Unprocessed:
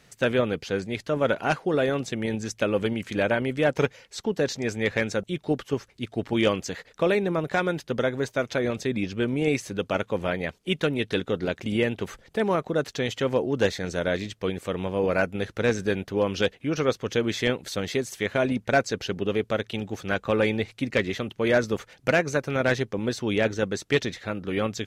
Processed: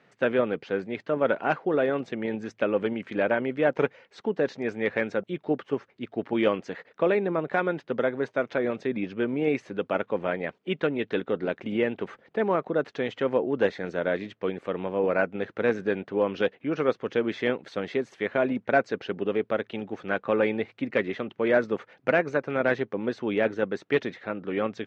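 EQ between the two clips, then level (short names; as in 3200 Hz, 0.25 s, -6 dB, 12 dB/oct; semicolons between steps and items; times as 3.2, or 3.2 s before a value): BPF 210–2100 Hz; 0.0 dB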